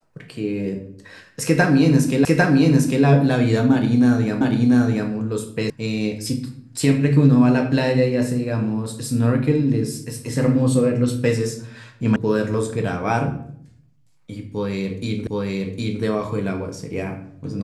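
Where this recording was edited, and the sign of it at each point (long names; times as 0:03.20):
0:02.25: the same again, the last 0.8 s
0:04.41: the same again, the last 0.69 s
0:05.70: cut off before it has died away
0:12.16: cut off before it has died away
0:15.27: the same again, the last 0.76 s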